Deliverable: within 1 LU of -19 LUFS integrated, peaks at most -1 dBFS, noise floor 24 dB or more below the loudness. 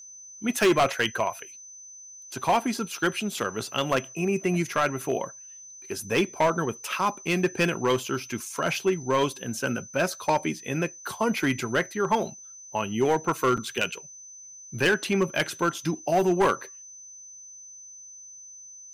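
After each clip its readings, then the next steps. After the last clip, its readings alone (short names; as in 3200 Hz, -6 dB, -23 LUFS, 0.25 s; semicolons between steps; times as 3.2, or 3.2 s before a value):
clipped 0.9%; flat tops at -16.0 dBFS; steady tone 6100 Hz; tone level -43 dBFS; loudness -26.5 LUFS; peak -16.0 dBFS; loudness target -19.0 LUFS
-> clip repair -16 dBFS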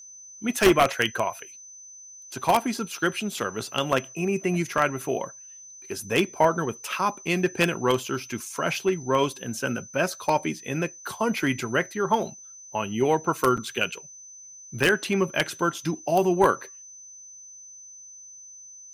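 clipped 0.0%; steady tone 6100 Hz; tone level -43 dBFS
-> notch 6100 Hz, Q 30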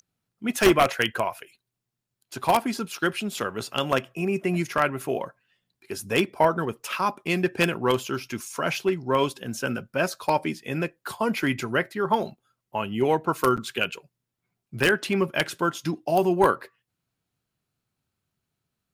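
steady tone none; loudness -25.5 LUFS; peak -6.5 dBFS; loudness target -19.0 LUFS
-> gain +6.5 dB; limiter -1 dBFS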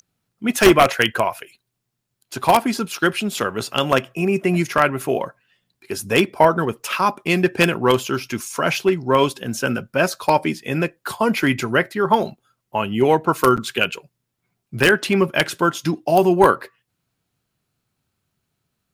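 loudness -19.0 LUFS; peak -1.0 dBFS; noise floor -77 dBFS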